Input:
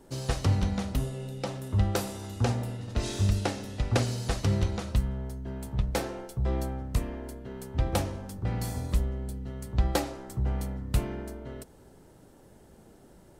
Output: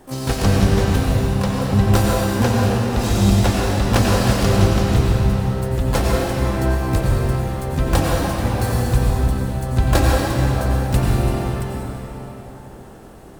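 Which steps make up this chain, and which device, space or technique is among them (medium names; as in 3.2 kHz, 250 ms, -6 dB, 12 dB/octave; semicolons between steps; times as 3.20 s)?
shimmer-style reverb (harmony voices +12 st -5 dB; reverberation RT60 4.0 s, pre-delay 85 ms, DRR -4 dB); trim +6.5 dB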